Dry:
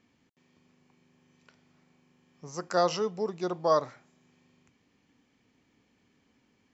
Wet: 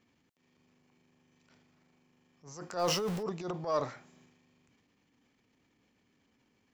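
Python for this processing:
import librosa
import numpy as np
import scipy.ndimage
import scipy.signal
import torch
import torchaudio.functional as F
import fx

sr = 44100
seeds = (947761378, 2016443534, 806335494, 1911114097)

p1 = fx.zero_step(x, sr, step_db=-37.0, at=(2.79, 3.23))
p2 = fx.transient(p1, sr, attack_db=-10, sustain_db=8)
p3 = 10.0 ** (-26.5 / 20.0) * np.tanh(p2 / 10.0 ** (-26.5 / 20.0))
p4 = p2 + (p3 * librosa.db_to_amplitude(-8.0))
y = p4 * librosa.db_to_amplitude(-6.5)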